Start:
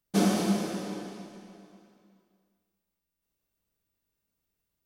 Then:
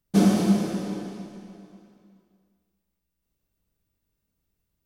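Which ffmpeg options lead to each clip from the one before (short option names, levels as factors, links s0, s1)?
-af "lowshelf=f=270:g=10.5"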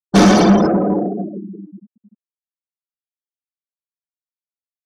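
-filter_complex "[0:a]afftfilt=real='re*gte(hypot(re,im),0.0224)':imag='im*gte(hypot(re,im),0.0224)':win_size=1024:overlap=0.75,asplit=2[s0][s1];[s1]highpass=f=720:p=1,volume=15.8,asoftclip=type=tanh:threshold=0.398[s2];[s0][s2]amix=inputs=2:normalize=0,lowpass=f=7100:p=1,volume=0.501,volume=2"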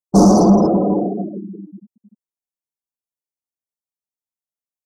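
-af "asuperstop=centerf=2400:order=8:qfactor=0.56"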